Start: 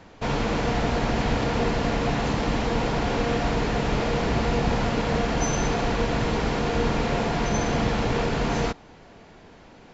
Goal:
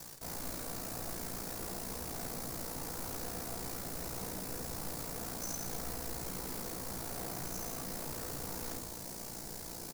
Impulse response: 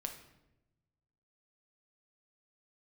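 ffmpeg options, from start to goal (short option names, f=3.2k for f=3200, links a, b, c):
-filter_complex "[0:a]highshelf=f=2.3k:g=-8,areverse,acompressor=threshold=-41dB:ratio=5,areverse,aecho=1:1:61|122|183|244|305:0.501|0.2|0.0802|0.0321|0.0128,acrusher=bits=8:mix=0:aa=0.000001,aeval=exprs='val(0)*sin(2*PI*29*n/s)':c=same,aeval=exprs='0.0106*(abs(mod(val(0)/0.0106+3,4)-2)-1)':c=same,aexciter=amount=3.2:drive=9:freq=4.4k[a];[1:a]atrim=start_sample=2205[b];[a][b]afir=irnorm=-1:irlink=0,volume=3dB"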